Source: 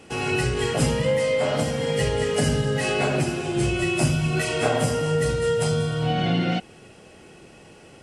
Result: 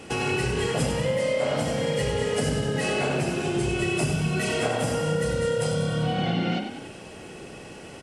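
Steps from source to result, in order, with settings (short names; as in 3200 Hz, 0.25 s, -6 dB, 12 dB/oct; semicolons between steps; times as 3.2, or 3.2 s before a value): compressor 3:1, threshold -31 dBFS, peak gain reduction 11.5 dB; on a send: frequency-shifting echo 95 ms, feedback 53%, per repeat +34 Hz, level -7.5 dB; on the sum: gain +5 dB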